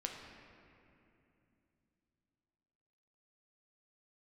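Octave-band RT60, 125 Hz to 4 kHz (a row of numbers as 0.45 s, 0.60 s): 4.0 s, 3.9 s, 3.0 s, 2.6 s, 2.5 s, 1.7 s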